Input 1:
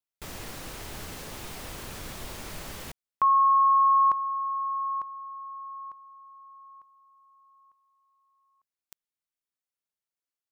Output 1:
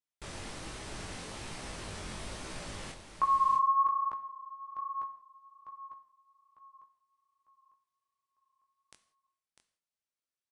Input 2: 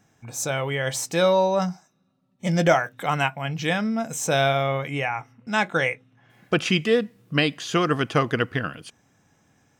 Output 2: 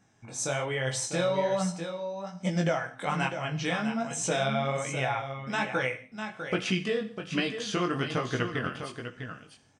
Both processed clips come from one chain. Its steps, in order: band-stop 6.9 kHz, Q 23; compression, threshold -22 dBFS; resampled via 22.05 kHz; on a send: delay 650 ms -8.5 dB; on the sum: chorus 1.2 Hz, delay 15.5 ms, depth 7.6 ms; gated-style reverb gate 210 ms falling, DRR 10.5 dB

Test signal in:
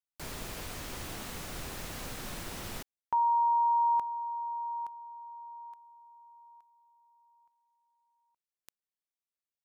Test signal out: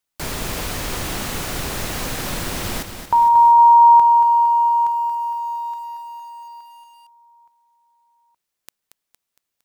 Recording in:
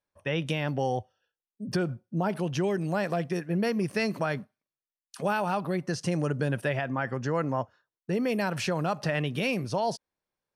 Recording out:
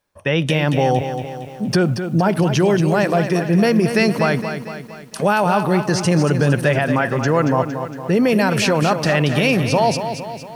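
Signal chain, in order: in parallel at 0 dB: peak limiter -25 dBFS; on the sum: bit-crushed delay 230 ms, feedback 55%, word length 9-bit, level -8.5 dB; trim +8 dB

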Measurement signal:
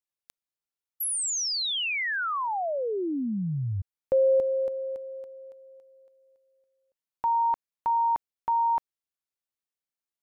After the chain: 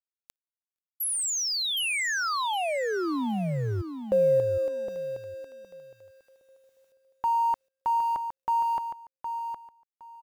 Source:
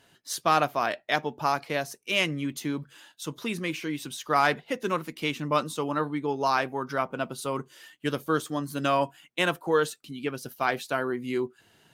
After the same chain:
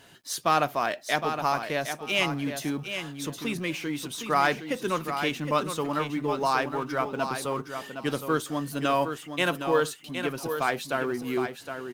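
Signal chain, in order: companding laws mixed up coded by mu; on a send: feedback delay 764 ms, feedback 19%, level -8 dB; on the sum: trim -1 dB

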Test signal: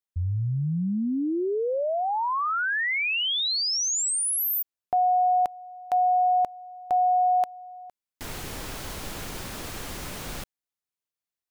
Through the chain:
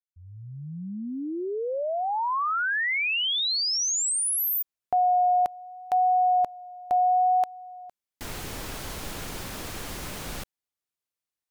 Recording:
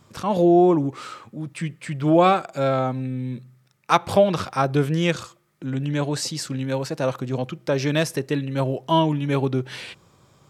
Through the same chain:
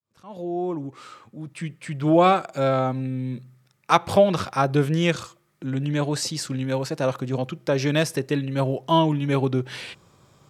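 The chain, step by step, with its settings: fade-in on the opening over 2.36 s; vibrato 0.71 Hz 15 cents

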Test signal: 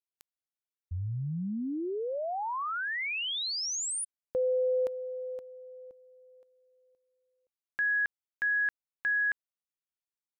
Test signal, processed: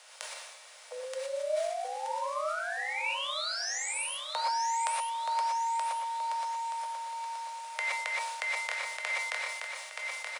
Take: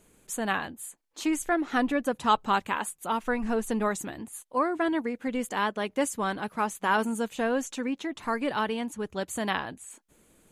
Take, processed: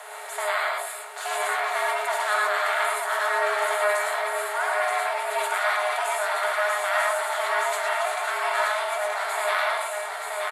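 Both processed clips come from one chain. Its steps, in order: spectral levelling over time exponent 0.4; band-stop 600 Hz, Q 12; feedback comb 210 Hz, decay 0.28 s, harmonics odd, mix 70%; frequency shift +410 Hz; feedback delay 926 ms, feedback 38%, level -4.5 dB; gated-style reverb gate 140 ms rising, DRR -1.5 dB; decay stretcher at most 40 dB/s; trim +1 dB

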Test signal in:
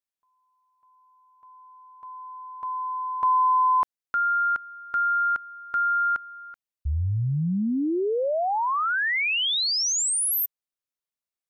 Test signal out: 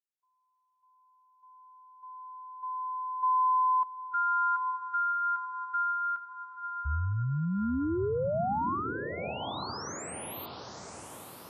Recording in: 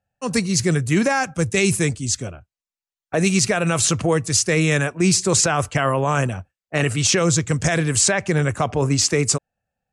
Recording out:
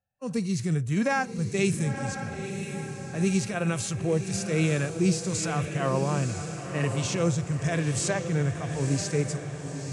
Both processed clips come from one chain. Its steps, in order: harmonic-percussive split percussive -14 dB; echo that smears into a reverb 971 ms, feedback 48%, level -7.5 dB; trim -5.5 dB

